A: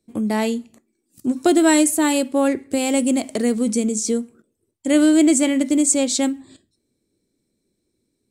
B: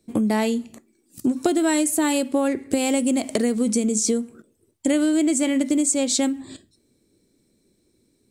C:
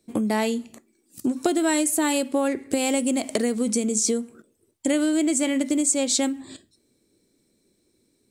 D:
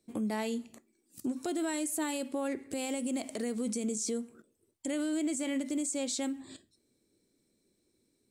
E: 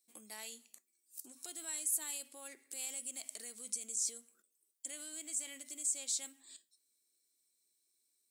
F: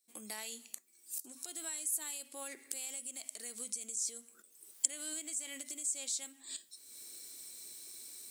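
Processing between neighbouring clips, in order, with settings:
compression 6:1, threshold -26 dBFS, peak gain reduction 14 dB; trim +7.5 dB
bass shelf 250 Hz -6 dB
peak limiter -18 dBFS, peak gain reduction 9 dB; trim -7.5 dB
differentiator; trim +1 dB
recorder AGC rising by 40 dB/s; trim -1 dB

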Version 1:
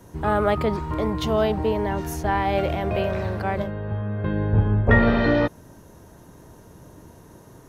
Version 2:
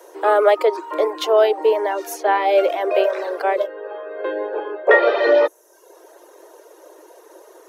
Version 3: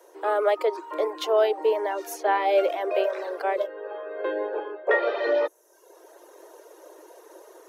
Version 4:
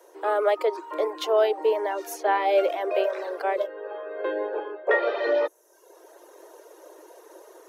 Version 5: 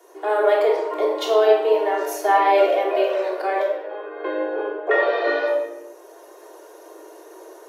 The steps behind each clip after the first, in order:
reverb removal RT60 0.74 s; steep high-pass 330 Hz 96 dB/octave; peaking EQ 540 Hz +6.5 dB 0.61 oct; trim +5.5 dB
level rider gain up to 6 dB; trim -9 dB
no audible change
reverberation RT60 1.0 s, pre-delay 3 ms, DRR -4 dB

